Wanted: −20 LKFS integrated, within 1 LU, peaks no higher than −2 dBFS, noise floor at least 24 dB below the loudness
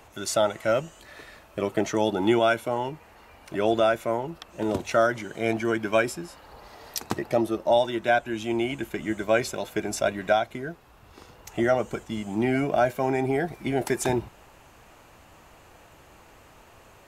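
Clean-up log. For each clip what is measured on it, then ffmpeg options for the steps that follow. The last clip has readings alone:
integrated loudness −26.0 LKFS; sample peak −9.5 dBFS; target loudness −20.0 LKFS
→ -af "volume=6dB"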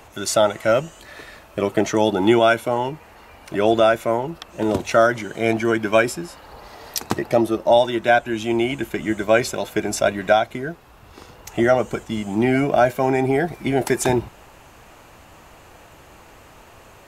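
integrated loudness −20.0 LKFS; sample peak −3.5 dBFS; background noise floor −47 dBFS

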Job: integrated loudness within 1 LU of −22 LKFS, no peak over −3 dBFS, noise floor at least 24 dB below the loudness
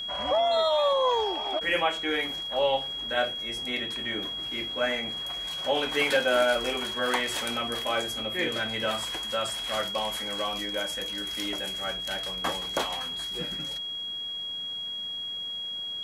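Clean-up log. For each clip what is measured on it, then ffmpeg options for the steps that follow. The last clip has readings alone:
interfering tone 3,300 Hz; level of the tone −32 dBFS; integrated loudness −28.0 LKFS; sample peak −12.0 dBFS; target loudness −22.0 LKFS
→ -af "bandreject=frequency=3300:width=30"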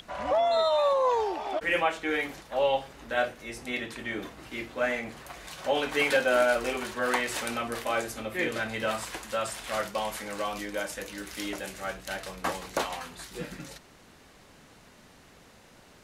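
interfering tone none found; integrated loudness −29.5 LKFS; sample peak −13.0 dBFS; target loudness −22.0 LKFS
→ -af "volume=7.5dB"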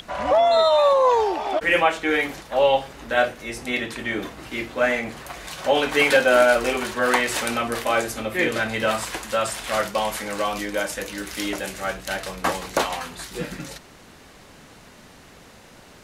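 integrated loudness −22.0 LKFS; sample peak −5.5 dBFS; background noise floor −48 dBFS

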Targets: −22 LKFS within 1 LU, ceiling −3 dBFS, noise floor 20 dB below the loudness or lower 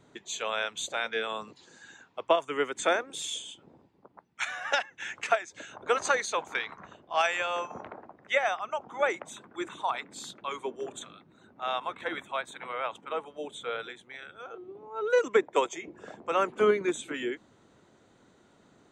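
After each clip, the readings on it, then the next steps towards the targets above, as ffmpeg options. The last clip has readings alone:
integrated loudness −31.0 LKFS; sample peak −11.0 dBFS; target loudness −22.0 LKFS
→ -af "volume=9dB,alimiter=limit=-3dB:level=0:latency=1"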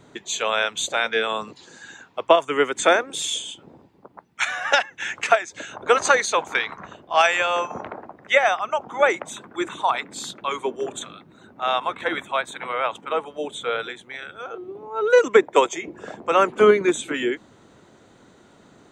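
integrated loudness −22.0 LKFS; sample peak −3.0 dBFS; background noise floor −54 dBFS

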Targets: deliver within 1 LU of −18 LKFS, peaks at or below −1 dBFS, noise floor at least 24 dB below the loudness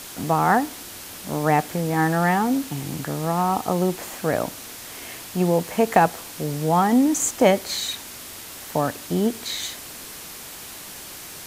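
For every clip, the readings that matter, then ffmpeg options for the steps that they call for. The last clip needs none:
background noise floor −39 dBFS; target noise floor −47 dBFS; integrated loudness −22.5 LKFS; sample peak −2.0 dBFS; target loudness −18.0 LKFS
→ -af "afftdn=noise_reduction=8:noise_floor=-39"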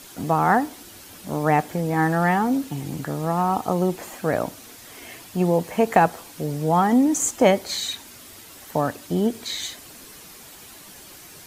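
background noise floor −44 dBFS; target noise floor −47 dBFS
→ -af "afftdn=noise_reduction=6:noise_floor=-44"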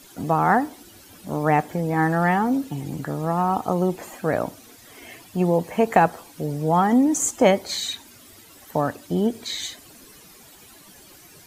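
background noise floor −49 dBFS; integrated loudness −22.5 LKFS; sample peak −2.0 dBFS; target loudness −18.0 LKFS
→ -af "volume=4.5dB,alimiter=limit=-1dB:level=0:latency=1"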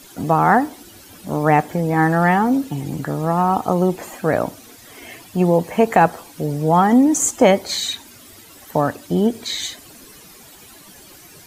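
integrated loudness −18.5 LKFS; sample peak −1.0 dBFS; background noise floor −44 dBFS

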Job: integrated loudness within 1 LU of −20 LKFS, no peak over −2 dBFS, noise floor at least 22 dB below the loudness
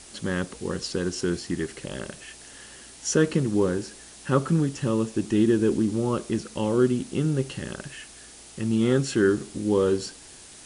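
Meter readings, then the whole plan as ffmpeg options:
background noise floor −47 dBFS; target noise floor −48 dBFS; integrated loudness −25.5 LKFS; sample peak −8.0 dBFS; target loudness −20.0 LKFS
→ -af "afftdn=noise_reduction=6:noise_floor=-47"
-af "volume=5.5dB"

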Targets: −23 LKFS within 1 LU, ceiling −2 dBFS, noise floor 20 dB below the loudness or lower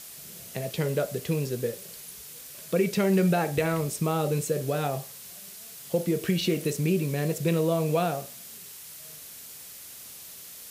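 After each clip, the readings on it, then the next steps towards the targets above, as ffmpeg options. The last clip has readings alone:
background noise floor −45 dBFS; target noise floor −48 dBFS; integrated loudness −27.5 LKFS; sample peak −12.5 dBFS; target loudness −23.0 LKFS
→ -af "afftdn=noise_reduction=6:noise_floor=-45"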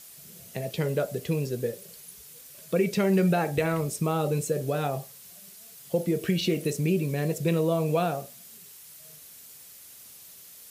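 background noise floor −49 dBFS; integrated loudness −27.5 LKFS; sample peak −12.5 dBFS; target loudness −23.0 LKFS
→ -af "volume=4.5dB"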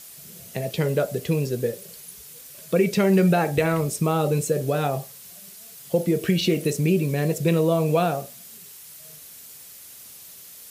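integrated loudness −23.0 LKFS; sample peak −8.0 dBFS; background noise floor −44 dBFS

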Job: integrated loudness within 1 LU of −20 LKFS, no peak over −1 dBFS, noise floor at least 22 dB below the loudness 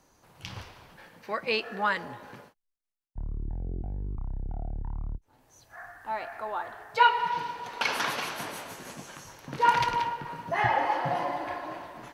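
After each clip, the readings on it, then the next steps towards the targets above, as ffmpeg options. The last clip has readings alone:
integrated loudness −29.5 LKFS; sample peak −8.5 dBFS; target loudness −20.0 LKFS
→ -af "volume=9.5dB,alimiter=limit=-1dB:level=0:latency=1"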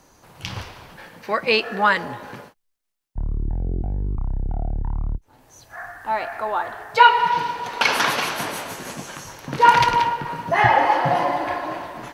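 integrated loudness −20.5 LKFS; sample peak −1.0 dBFS; background noise floor −62 dBFS

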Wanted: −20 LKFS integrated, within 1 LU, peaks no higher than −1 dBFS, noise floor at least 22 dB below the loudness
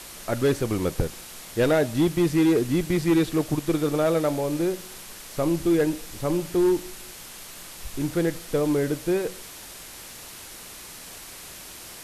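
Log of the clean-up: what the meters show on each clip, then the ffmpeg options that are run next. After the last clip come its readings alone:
background noise floor −42 dBFS; target noise floor −47 dBFS; integrated loudness −24.5 LKFS; sample peak −13.0 dBFS; target loudness −20.0 LKFS
→ -af "afftdn=noise_reduction=6:noise_floor=-42"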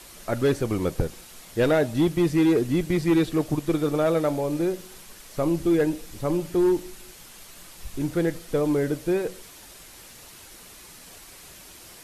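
background noise floor −47 dBFS; integrated loudness −24.5 LKFS; sample peak −13.0 dBFS; target loudness −20.0 LKFS
→ -af "volume=4.5dB"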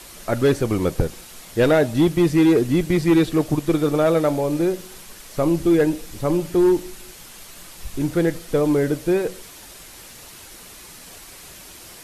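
integrated loudness −20.0 LKFS; sample peak −8.5 dBFS; background noise floor −42 dBFS

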